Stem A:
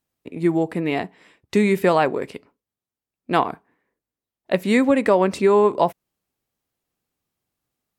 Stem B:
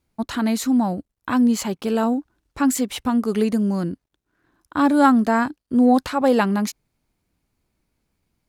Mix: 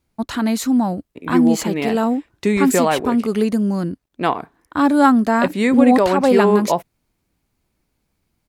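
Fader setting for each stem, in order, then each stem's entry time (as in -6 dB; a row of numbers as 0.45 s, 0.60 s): 0.0 dB, +2.0 dB; 0.90 s, 0.00 s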